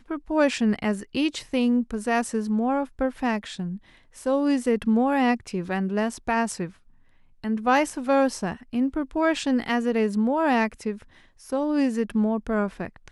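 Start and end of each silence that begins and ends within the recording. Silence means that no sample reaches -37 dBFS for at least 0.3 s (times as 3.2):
3.77–4.17
6.69–7.44
11.02–11.46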